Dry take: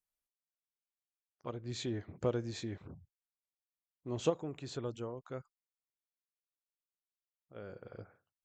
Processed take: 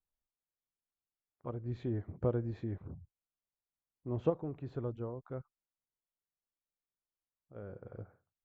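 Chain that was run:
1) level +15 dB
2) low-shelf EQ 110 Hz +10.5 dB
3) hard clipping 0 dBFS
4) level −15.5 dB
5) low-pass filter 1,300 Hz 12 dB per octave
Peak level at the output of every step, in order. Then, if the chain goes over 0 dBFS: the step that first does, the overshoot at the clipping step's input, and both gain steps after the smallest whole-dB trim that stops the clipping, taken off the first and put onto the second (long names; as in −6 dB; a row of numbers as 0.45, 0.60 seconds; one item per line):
−3.0, −2.0, −2.0, −17.5, −18.0 dBFS
no step passes full scale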